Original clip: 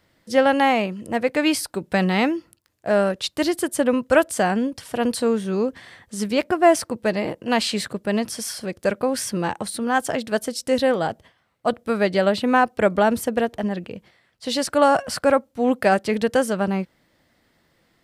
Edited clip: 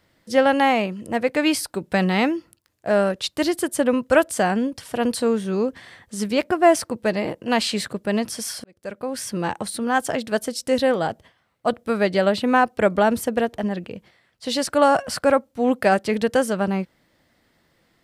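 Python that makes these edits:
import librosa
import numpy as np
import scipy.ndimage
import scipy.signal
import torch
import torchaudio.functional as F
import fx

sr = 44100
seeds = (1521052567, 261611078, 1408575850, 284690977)

y = fx.edit(x, sr, fx.fade_in_span(start_s=8.64, length_s=0.87), tone=tone)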